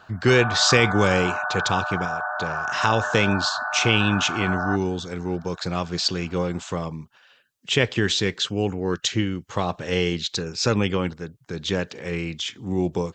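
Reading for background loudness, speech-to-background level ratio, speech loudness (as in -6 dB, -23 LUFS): -27.5 LUFS, 4.0 dB, -23.5 LUFS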